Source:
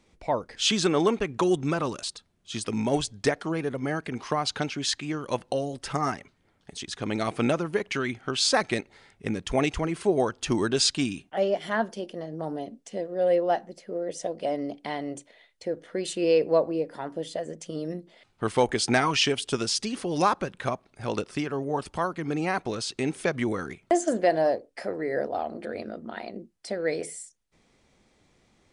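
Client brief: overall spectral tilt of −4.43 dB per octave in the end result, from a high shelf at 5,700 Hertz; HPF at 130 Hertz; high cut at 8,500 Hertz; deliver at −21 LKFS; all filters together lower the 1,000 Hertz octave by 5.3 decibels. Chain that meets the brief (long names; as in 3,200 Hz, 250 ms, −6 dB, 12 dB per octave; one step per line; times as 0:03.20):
high-pass filter 130 Hz
low-pass filter 8,500 Hz
parametric band 1,000 Hz −7.5 dB
high-shelf EQ 5,700 Hz −5.5 dB
level +9 dB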